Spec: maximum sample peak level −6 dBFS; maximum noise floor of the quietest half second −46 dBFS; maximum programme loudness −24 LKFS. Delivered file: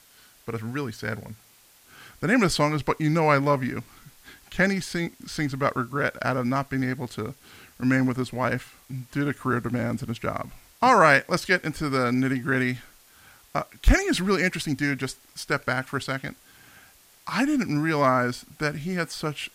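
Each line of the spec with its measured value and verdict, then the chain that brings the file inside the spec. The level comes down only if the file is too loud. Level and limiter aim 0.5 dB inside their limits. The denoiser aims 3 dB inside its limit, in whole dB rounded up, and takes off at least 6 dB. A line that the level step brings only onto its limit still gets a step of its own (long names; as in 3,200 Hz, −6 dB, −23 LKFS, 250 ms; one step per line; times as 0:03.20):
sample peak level −4.5 dBFS: out of spec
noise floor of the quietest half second −56 dBFS: in spec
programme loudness −25.0 LKFS: in spec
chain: brickwall limiter −6.5 dBFS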